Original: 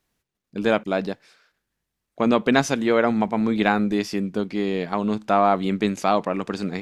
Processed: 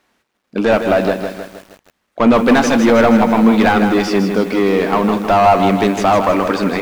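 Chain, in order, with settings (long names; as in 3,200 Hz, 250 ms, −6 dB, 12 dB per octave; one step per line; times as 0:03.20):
log-companded quantiser 8 bits
mid-hump overdrive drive 26 dB, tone 1,500 Hz, clips at −2.5 dBFS
on a send at −17 dB: convolution reverb RT60 0.30 s, pre-delay 3 ms
on the sum: feedback echo at a low word length 158 ms, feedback 55%, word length 6 bits, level −7 dB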